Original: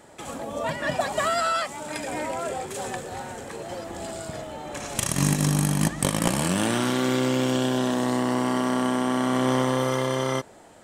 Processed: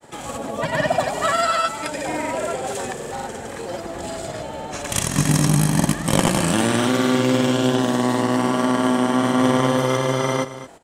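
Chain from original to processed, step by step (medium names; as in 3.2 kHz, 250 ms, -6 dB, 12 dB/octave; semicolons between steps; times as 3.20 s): granulator, pitch spread up and down by 0 st; on a send: delay 222 ms -13.5 dB; on the sum: trim +6 dB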